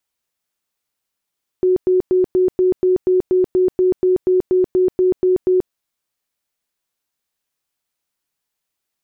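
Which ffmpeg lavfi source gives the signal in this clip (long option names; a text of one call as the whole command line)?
ffmpeg -f lavfi -i "aevalsrc='0.282*sin(2*PI*368*mod(t,0.24))*lt(mod(t,0.24),49/368)':duration=4.08:sample_rate=44100" out.wav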